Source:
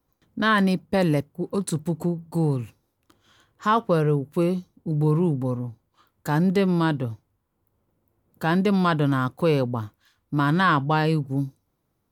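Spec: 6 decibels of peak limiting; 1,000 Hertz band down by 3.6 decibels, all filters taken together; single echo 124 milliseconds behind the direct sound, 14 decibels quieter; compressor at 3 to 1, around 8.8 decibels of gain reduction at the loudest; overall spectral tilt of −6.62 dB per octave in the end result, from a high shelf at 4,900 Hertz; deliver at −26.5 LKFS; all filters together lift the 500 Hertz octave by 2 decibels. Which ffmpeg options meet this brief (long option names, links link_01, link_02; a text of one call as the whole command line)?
ffmpeg -i in.wav -af "equalizer=frequency=500:width_type=o:gain=3.5,equalizer=frequency=1000:width_type=o:gain=-5.5,highshelf=frequency=4900:gain=5,acompressor=threshold=-27dB:ratio=3,alimiter=limit=-22dB:level=0:latency=1,aecho=1:1:124:0.2,volume=6dB" out.wav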